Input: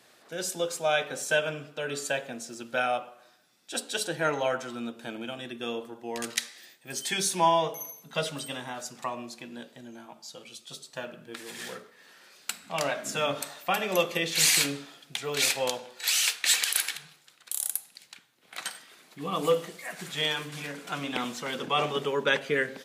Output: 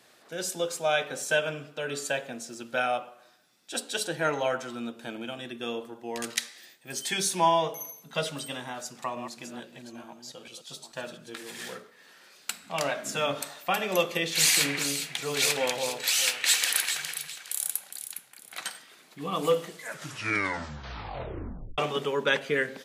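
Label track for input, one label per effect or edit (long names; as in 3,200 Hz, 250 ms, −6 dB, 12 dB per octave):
8.720000	11.480000	delay that plays each chunk backwards 440 ms, level −8 dB
14.360000	18.630000	delay that swaps between a low-pass and a high-pass 205 ms, split 2,400 Hz, feedback 52%, level −3 dB
19.690000	19.690000	tape stop 2.09 s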